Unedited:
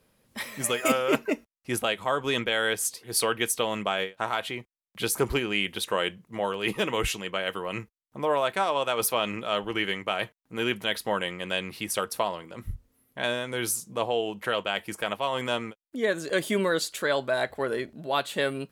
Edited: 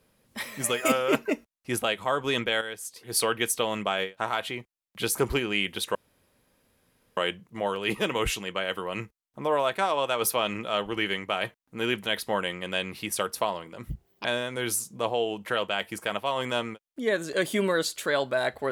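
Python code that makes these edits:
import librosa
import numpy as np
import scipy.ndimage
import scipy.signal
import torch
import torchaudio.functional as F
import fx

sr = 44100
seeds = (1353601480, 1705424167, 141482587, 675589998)

y = fx.edit(x, sr, fx.clip_gain(start_s=2.61, length_s=0.35, db=-10.0),
    fx.insert_room_tone(at_s=5.95, length_s=1.22),
    fx.speed_span(start_s=12.68, length_s=0.53, speed=1.53), tone=tone)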